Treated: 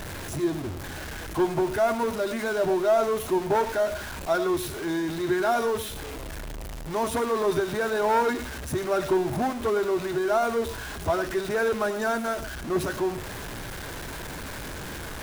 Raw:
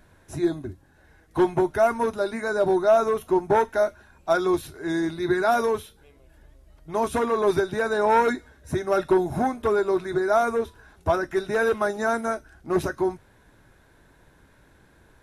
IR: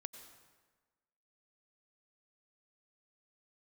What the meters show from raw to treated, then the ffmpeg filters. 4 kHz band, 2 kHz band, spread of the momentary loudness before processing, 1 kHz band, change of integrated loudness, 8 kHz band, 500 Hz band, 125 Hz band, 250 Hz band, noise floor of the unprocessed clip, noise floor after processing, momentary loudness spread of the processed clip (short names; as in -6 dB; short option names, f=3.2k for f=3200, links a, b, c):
+4.0 dB, -1.0 dB, 9 LU, -2.5 dB, -3.0 dB, +5.0 dB, -2.5 dB, +0.5 dB, -2.0 dB, -57 dBFS, -36 dBFS, 12 LU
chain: -filter_complex "[0:a]aeval=exprs='val(0)+0.5*0.0501*sgn(val(0))':c=same[a];[1:a]atrim=start_sample=2205,afade=t=out:st=0.16:d=0.01,atrim=end_sample=7497[b];[a][b]afir=irnorm=-1:irlink=0"